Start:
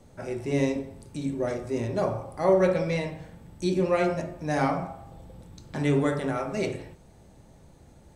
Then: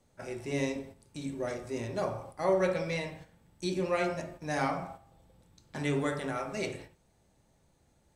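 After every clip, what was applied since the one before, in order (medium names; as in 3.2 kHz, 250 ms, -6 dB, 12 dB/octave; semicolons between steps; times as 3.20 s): gate -40 dBFS, range -8 dB; tilt shelf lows -3.5 dB, about 920 Hz; trim -4.5 dB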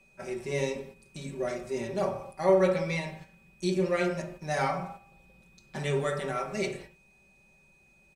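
comb 5.2 ms, depth 83%; whistle 2.5 kHz -61 dBFS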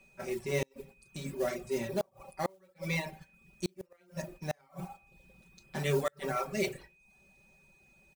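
modulation noise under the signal 19 dB; reverb removal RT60 0.55 s; inverted gate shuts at -19 dBFS, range -37 dB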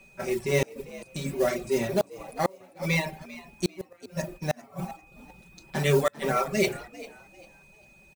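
frequency-shifting echo 397 ms, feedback 31%, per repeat +73 Hz, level -18 dB; trim +7.5 dB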